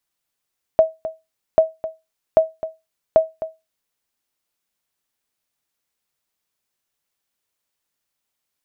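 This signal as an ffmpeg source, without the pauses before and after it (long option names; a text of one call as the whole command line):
ffmpeg -f lavfi -i "aevalsrc='0.631*(sin(2*PI*642*mod(t,0.79))*exp(-6.91*mod(t,0.79)/0.22)+0.2*sin(2*PI*642*max(mod(t,0.79)-0.26,0))*exp(-6.91*max(mod(t,0.79)-0.26,0)/0.22))':duration=3.16:sample_rate=44100" out.wav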